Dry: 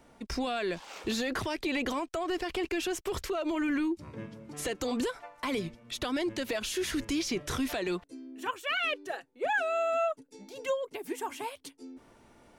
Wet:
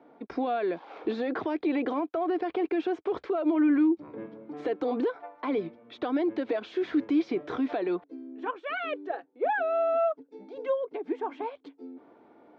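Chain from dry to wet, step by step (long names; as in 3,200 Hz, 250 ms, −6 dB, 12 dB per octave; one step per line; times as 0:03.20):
loudspeaker in its box 230–3,000 Hz, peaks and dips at 300 Hz +9 dB, 450 Hz +6 dB, 740 Hz +6 dB, 1,900 Hz −5 dB, 2,800 Hz −10 dB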